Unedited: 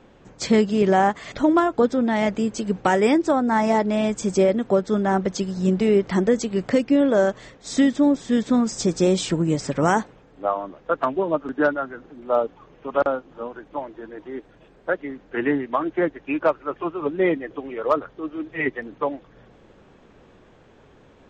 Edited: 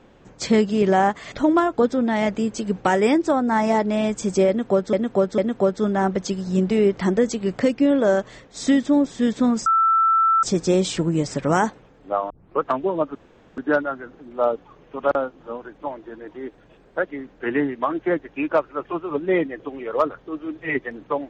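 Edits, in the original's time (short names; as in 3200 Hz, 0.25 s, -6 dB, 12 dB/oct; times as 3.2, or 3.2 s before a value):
4.48–4.93 loop, 3 plays
8.76 add tone 1330 Hz -14 dBFS 0.77 s
10.63 tape start 0.32 s
11.48 insert room tone 0.42 s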